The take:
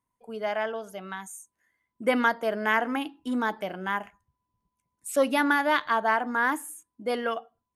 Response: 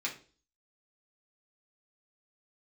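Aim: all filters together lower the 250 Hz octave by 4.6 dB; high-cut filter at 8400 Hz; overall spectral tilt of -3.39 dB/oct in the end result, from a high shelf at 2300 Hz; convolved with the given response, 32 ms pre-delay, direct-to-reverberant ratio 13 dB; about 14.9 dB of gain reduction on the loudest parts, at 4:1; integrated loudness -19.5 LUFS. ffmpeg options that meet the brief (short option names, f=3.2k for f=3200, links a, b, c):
-filter_complex "[0:a]lowpass=8.4k,equalizer=f=250:t=o:g=-5,highshelf=f=2.3k:g=-3.5,acompressor=threshold=-38dB:ratio=4,asplit=2[a][b];[1:a]atrim=start_sample=2205,adelay=32[c];[b][c]afir=irnorm=-1:irlink=0,volume=-17dB[d];[a][d]amix=inputs=2:normalize=0,volume=21.5dB"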